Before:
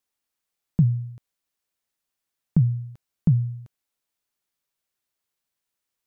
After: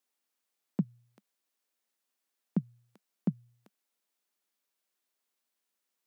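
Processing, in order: elliptic high-pass 200 Hz, stop band 50 dB

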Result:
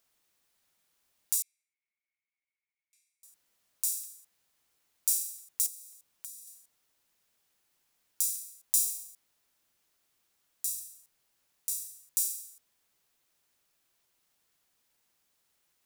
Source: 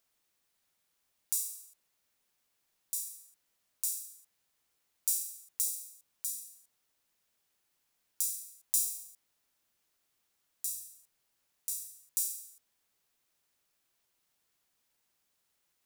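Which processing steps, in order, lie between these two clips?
1.42–3.23 s: band-pass filter 2.2 kHz, Q 20; 5.66–6.47 s: compression 6:1, threshold -44 dBFS, peak gain reduction 12.5 dB; crackling interface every 0.27 s, samples 256, repeat, from 0.52 s; trim +3 dB

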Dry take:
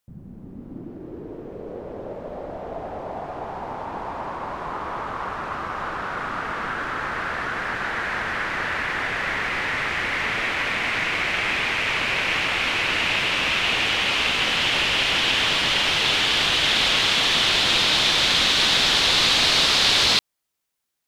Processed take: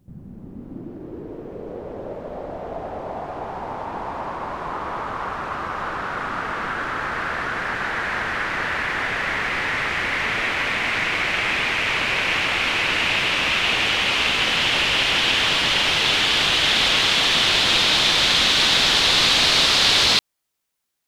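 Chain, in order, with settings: pre-echo 197 ms -16.5 dB; trim +1.5 dB

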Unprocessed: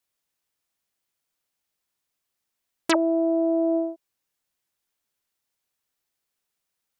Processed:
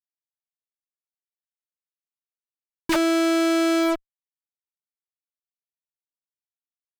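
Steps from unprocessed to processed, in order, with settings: tracing distortion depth 0.2 ms; fuzz box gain 45 dB, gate -50 dBFS; trim -6 dB

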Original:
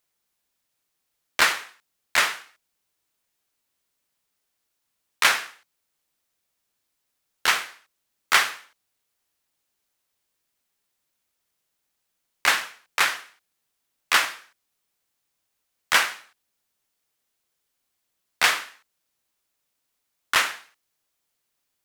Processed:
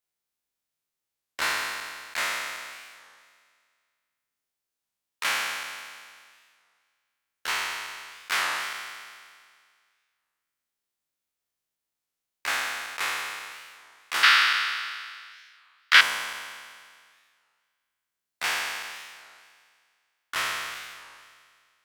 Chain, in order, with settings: spectral sustain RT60 1.97 s; 14.23–16.01 s: high-order bell 2.5 kHz +13.5 dB 2.4 oct; warped record 33 1/3 rpm, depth 250 cents; trim -12 dB

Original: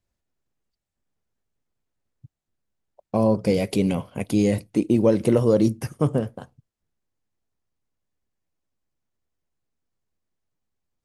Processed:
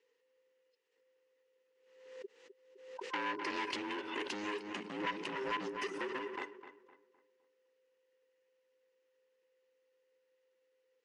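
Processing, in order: every band turned upside down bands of 500 Hz; compression 12:1, threshold -28 dBFS, peak gain reduction 16 dB; hard clipper -33.5 dBFS, distortion -7 dB; cabinet simulation 450–6400 Hz, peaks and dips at 480 Hz +5 dB, 690 Hz -10 dB, 1.9 kHz +10 dB, 2.8 kHz +9 dB; filtered feedback delay 256 ms, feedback 36%, low-pass 2.6 kHz, level -11.5 dB; swell ahead of each attack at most 63 dB/s; trim +1 dB

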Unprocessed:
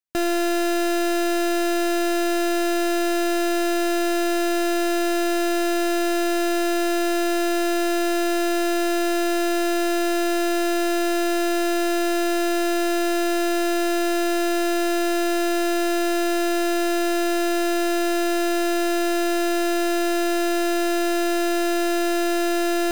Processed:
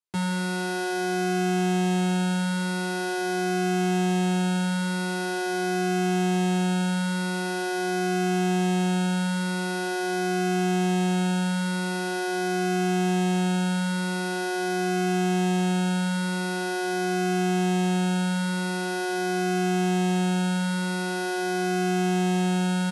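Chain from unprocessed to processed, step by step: high-pass 220 Hz; pitch shift -11 st; feedback echo behind a band-pass 81 ms, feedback 57%, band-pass 1.3 kHz, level -5.5 dB; endless flanger 7.3 ms +0.44 Hz

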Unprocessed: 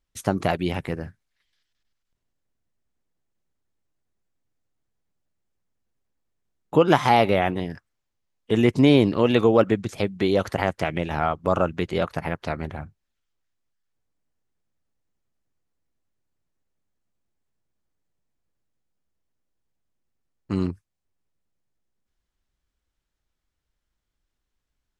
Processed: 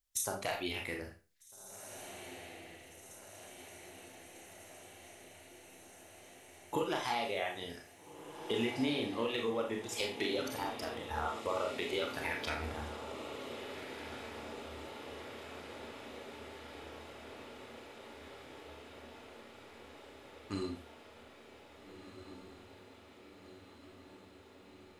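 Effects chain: pre-emphasis filter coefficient 0.8; spectral noise reduction 9 dB; peaking EQ 160 Hz -9 dB 0.87 oct; compression 10:1, threshold -44 dBFS, peak gain reduction 19 dB; hard clipper -33.5 dBFS, distortion -27 dB; 10.50–11.41 s: static phaser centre 980 Hz, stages 4; echo that smears into a reverb 1694 ms, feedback 75%, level -10 dB; on a send at -1 dB: reverberation RT60 0.35 s, pre-delay 27 ms; on the sum: trim +10.5 dB

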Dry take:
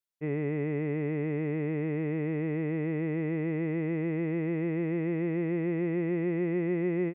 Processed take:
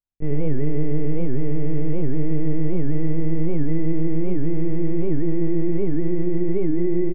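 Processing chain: median filter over 15 samples; LPC vocoder at 8 kHz pitch kept; tilt EQ -3.5 dB/octave; delay 82 ms -7.5 dB; warped record 78 rpm, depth 250 cents

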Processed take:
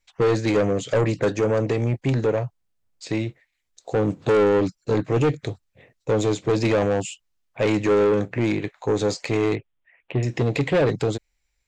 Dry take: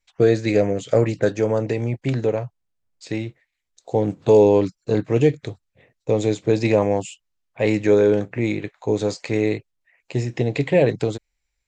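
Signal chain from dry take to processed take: 9.55–10.23 s: elliptic low-pass 3.4 kHz; saturation -18 dBFS, distortion -9 dB; trim +3 dB

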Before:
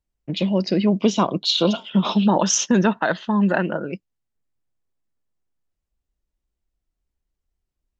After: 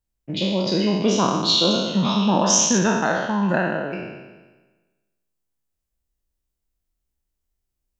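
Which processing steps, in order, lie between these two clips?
spectral sustain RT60 1.25 s; treble shelf 6.8 kHz +7.5 dB, from 2.78 s -2 dB, from 3.92 s +11 dB; trim -4 dB

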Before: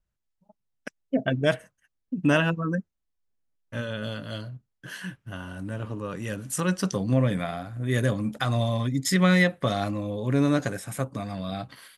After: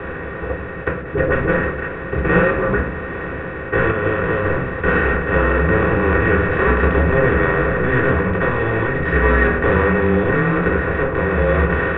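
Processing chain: spectral levelling over time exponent 0.2; 3.91–4.45 s: expander -12 dBFS; level rider gain up to 4 dB; mistuned SSB -120 Hz 200–2500 Hz; 1.01–1.49 s: phase dispersion highs, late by 47 ms, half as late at 650 Hz; reverberation RT60 0.40 s, pre-delay 3 ms, DRR -2.5 dB; trim -3 dB

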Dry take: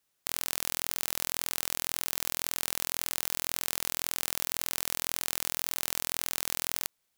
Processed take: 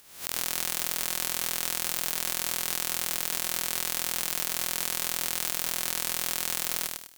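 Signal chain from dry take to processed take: reverse spectral sustain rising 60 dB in 0.33 s; upward compressor, threshold -43 dBFS; on a send: feedback echo behind a high-pass 64 ms, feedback 61%, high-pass 4.5 kHz, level -15 dB; on the sum: bit-crushed delay 101 ms, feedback 35%, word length 7-bit, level -4 dB

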